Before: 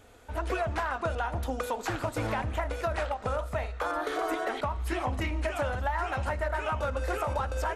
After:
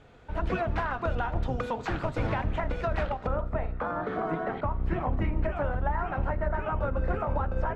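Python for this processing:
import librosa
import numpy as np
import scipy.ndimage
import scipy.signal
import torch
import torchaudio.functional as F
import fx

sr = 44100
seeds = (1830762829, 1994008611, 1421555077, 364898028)

y = fx.octave_divider(x, sr, octaves=1, level_db=3.0)
y = fx.lowpass(y, sr, hz=fx.steps((0.0, 3700.0), (3.27, 1600.0)), slope=12)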